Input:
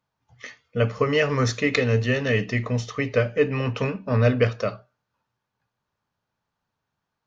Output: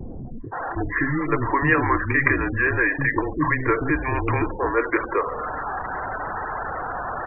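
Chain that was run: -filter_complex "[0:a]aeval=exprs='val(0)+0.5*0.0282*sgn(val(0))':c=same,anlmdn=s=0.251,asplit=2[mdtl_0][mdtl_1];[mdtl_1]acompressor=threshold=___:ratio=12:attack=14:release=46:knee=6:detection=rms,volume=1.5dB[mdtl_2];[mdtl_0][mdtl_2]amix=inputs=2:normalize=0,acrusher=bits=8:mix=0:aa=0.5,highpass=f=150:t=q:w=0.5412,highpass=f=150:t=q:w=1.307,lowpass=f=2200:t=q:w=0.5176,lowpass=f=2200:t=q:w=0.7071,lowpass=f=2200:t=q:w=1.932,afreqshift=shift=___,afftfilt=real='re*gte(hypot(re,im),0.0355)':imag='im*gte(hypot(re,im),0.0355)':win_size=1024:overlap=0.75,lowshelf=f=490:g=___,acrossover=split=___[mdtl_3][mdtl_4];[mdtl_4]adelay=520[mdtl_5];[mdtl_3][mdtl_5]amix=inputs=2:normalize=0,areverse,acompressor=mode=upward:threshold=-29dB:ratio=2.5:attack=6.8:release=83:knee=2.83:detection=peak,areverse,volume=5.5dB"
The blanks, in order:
-27dB, -140, -10, 320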